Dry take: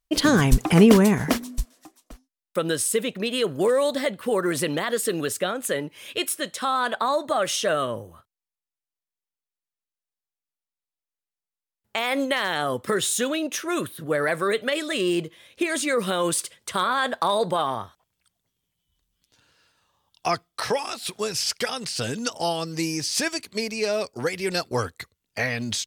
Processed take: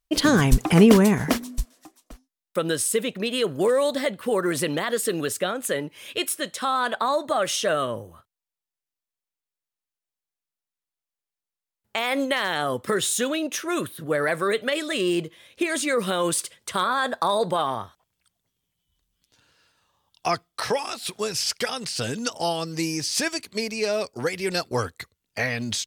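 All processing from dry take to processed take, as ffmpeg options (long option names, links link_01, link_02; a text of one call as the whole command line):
ffmpeg -i in.wav -filter_complex "[0:a]asettb=1/sr,asplit=3[link_01][link_02][link_03];[link_01]atrim=end=16.844[link_04];[link_02]atrim=start=16.84:end=17.42,asetpts=PTS-STARTPTS,afade=type=in:duration=0.004:curve=qsin,afade=type=out:start_time=0.576:duration=0.004:curve=qsin,equalizer=frequency=2200:width_type=o:width=0.25:gain=-7,bandreject=frequency=3000:width=5.7[link_05];[link_03]atrim=start=17.416[link_06];[link_04][link_05]acrossfade=duration=0.004:curve1=hsin:curve2=qsin[link_07];[link_07][link_06]acrossfade=duration=0.004:curve1=qsin:curve2=hsin" out.wav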